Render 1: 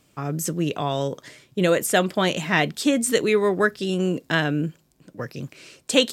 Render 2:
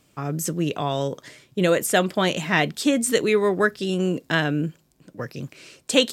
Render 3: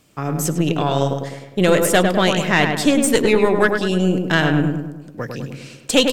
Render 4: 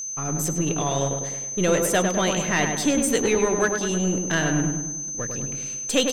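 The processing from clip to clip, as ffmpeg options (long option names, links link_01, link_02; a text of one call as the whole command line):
ffmpeg -i in.wav -af anull out.wav
ffmpeg -i in.wav -filter_complex "[0:a]aeval=exprs='(tanh(3.55*val(0)+0.5)-tanh(0.5))/3.55':channel_layout=same,asplit=2[link_01][link_02];[link_02]adelay=102,lowpass=frequency=2100:poles=1,volume=-4.5dB,asplit=2[link_03][link_04];[link_04]adelay=102,lowpass=frequency=2100:poles=1,volume=0.54,asplit=2[link_05][link_06];[link_06]adelay=102,lowpass=frequency=2100:poles=1,volume=0.54,asplit=2[link_07][link_08];[link_08]adelay=102,lowpass=frequency=2100:poles=1,volume=0.54,asplit=2[link_09][link_10];[link_10]adelay=102,lowpass=frequency=2100:poles=1,volume=0.54,asplit=2[link_11][link_12];[link_12]adelay=102,lowpass=frequency=2100:poles=1,volume=0.54,asplit=2[link_13][link_14];[link_14]adelay=102,lowpass=frequency=2100:poles=1,volume=0.54[link_15];[link_03][link_05][link_07][link_09][link_11][link_13][link_15]amix=inputs=7:normalize=0[link_16];[link_01][link_16]amix=inputs=2:normalize=0,volume=6dB" out.wav
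ffmpeg -i in.wav -af "aeval=exprs='if(lt(val(0),0),0.447*val(0),val(0))':channel_layout=same,aeval=exprs='val(0)+0.0447*sin(2*PI*6200*n/s)':channel_layout=same,volume=-2dB" out.wav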